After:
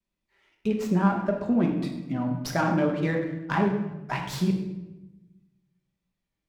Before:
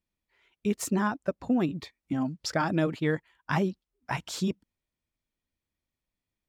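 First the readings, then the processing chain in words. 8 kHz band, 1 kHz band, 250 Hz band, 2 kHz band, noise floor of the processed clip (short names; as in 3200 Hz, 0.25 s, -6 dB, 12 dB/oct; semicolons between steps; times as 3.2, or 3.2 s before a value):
-5.0 dB, +3.5 dB, +4.0 dB, +1.5 dB, -84 dBFS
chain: treble ducked by the level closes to 2500 Hz, closed at -24 dBFS; vibrato 1.7 Hz 97 cents; shoebox room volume 480 m³, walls mixed, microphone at 1.2 m; running maximum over 3 samples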